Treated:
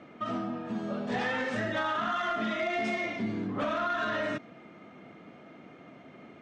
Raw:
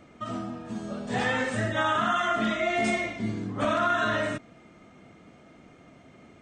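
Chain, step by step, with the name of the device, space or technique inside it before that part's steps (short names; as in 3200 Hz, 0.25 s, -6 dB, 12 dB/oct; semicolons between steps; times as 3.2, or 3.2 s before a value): dynamic EQ 5500 Hz, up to +7 dB, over -54 dBFS, Q 1.6; AM radio (BPF 160–3400 Hz; compressor 4:1, threshold -30 dBFS, peak gain reduction 7.5 dB; soft clip -25.5 dBFS, distortion -20 dB); gain +3 dB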